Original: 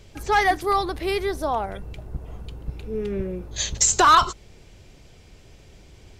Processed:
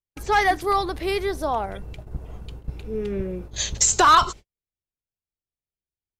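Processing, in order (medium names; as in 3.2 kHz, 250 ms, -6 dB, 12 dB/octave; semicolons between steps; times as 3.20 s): gate -36 dBFS, range -51 dB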